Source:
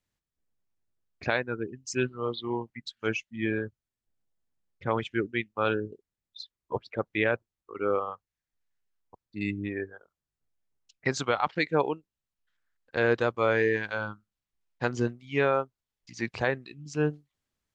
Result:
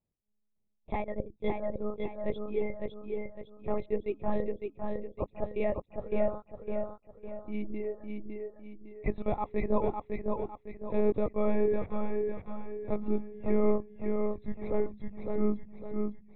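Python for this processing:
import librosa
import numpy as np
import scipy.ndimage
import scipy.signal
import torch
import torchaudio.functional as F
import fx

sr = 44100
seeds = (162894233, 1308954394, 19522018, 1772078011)

p1 = fx.speed_glide(x, sr, from_pct=139, to_pct=78)
p2 = fx.lpc_monotone(p1, sr, seeds[0], pitch_hz=210.0, order=8)
p3 = scipy.signal.lfilter(np.full(29, 1.0 / 29), 1.0, p2)
y = p3 + fx.echo_feedback(p3, sr, ms=556, feedback_pct=40, wet_db=-4.0, dry=0)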